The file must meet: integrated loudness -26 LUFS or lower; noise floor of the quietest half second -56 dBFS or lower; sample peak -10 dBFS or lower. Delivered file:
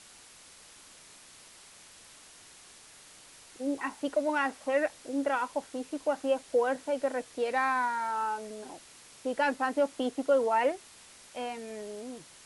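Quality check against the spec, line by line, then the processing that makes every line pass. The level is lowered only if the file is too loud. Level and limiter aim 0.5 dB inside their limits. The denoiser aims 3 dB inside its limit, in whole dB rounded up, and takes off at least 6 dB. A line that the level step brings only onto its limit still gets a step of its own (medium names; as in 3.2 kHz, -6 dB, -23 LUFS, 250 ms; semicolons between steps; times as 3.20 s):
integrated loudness -31.0 LUFS: pass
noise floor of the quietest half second -54 dBFS: fail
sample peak -16.0 dBFS: pass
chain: noise reduction 6 dB, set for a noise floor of -54 dBFS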